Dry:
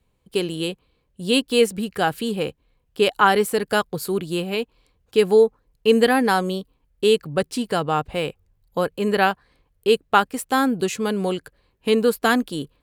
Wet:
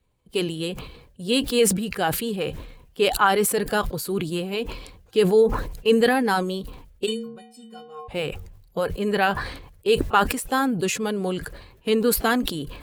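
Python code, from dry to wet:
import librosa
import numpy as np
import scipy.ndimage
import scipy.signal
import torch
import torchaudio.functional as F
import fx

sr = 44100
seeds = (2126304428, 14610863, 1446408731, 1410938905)

y = fx.spec_quant(x, sr, step_db=15)
y = fx.stiff_resonator(y, sr, f0_hz=220.0, decay_s=0.7, stiffness=0.03, at=(7.05, 8.07), fade=0.02)
y = fx.sustainer(y, sr, db_per_s=64.0)
y = F.gain(torch.from_numpy(y), -2.5).numpy()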